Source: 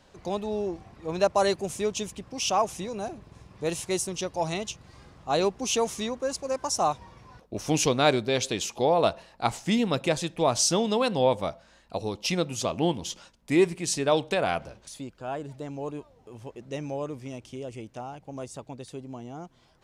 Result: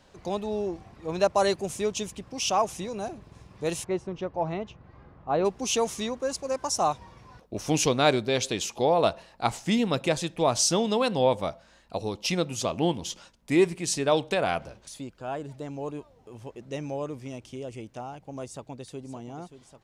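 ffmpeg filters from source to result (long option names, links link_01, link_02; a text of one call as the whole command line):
ffmpeg -i in.wav -filter_complex "[0:a]asplit=3[link_01][link_02][link_03];[link_01]afade=type=out:start_time=3.83:duration=0.02[link_04];[link_02]lowpass=1600,afade=type=in:start_time=3.83:duration=0.02,afade=type=out:start_time=5.44:duration=0.02[link_05];[link_03]afade=type=in:start_time=5.44:duration=0.02[link_06];[link_04][link_05][link_06]amix=inputs=3:normalize=0,asplit=2[link_07][link_08];[link_08]afade=type=in:start_time=18.45:duration=0.01,afade=type=out:start_time=19.03:duration=0.01,aecho=0:1:580|1160|1740|2320|2900|3480|4060|4640|5220|5800|6380|6960:0.266073|0.226162|0.192237|0.163402|0.138892|0.118058|0.100349|0.0852967|0.0725022|0.0616269|0.0523829|0.0445254[link_09];[link_07][link_09]amix=inputs=2:normalize=0" out.wav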